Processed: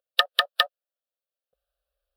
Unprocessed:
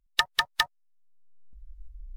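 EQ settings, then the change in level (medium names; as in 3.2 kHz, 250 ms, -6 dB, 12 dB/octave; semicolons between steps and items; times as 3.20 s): dynamic bell 2.6 kHz, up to +5 dB, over -34 dBFS, Q 0.84; resonant high-pass 540 Hz, resonance Q 4.9; static phaser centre 1.4 kHz, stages 8; +2.5 dB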